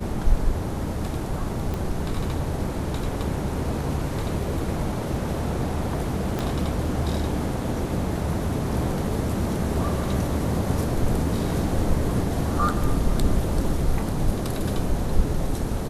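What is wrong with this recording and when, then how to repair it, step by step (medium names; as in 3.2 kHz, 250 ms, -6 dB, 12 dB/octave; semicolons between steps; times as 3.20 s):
1.74 s: pop
6.39 s: pop -13 dBFS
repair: de-click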